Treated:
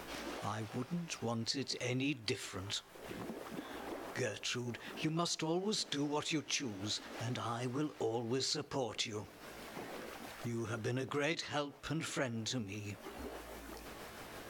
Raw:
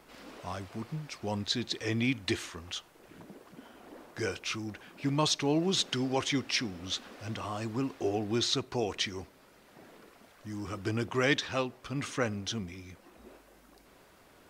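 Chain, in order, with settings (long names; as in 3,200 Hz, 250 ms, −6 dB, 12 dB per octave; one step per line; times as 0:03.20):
pitch shift by two crossfaded delay taps +2 semitones
downward compressor 2.5 to 1, threshold −54 dBFS, peak gain reduction 20.5 dB
level +11 dB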